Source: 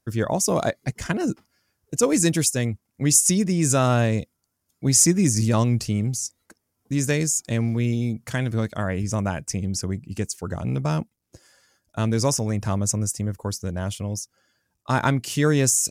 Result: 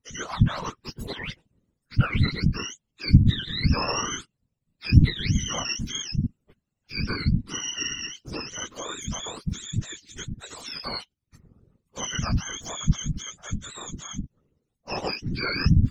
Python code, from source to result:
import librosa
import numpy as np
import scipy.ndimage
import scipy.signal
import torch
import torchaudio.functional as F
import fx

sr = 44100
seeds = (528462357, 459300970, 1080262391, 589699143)

y = fx.octave_mirror(x, sr, pivot_hz=820.0)
y = fx.whisperise(y, sr, seeds[0])
y = y * 10.0 ** (-6.0 / 20.0)